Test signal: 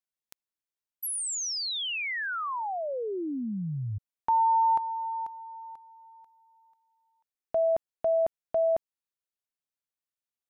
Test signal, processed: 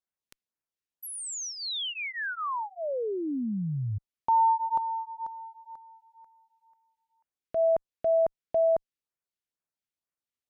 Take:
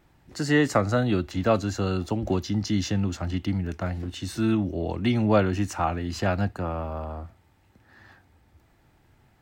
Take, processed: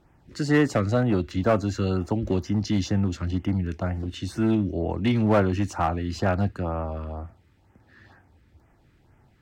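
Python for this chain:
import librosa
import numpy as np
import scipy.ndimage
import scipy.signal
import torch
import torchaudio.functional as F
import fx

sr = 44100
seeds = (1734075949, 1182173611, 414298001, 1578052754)

y = fx.high_shelf(x, sr, hz=7100.0, db=-11.0)
y = fx.filter_lfo_notch(y, sr, shape='sine', hz=2.1, low_hz=710.0, high_hz=4200.0, q=1.0)
y = fx.clip_asym(y, sr, top_db=-18.0, bottom_db=-12.5)
y = y * 10.0 ** (2.0 / 20.0)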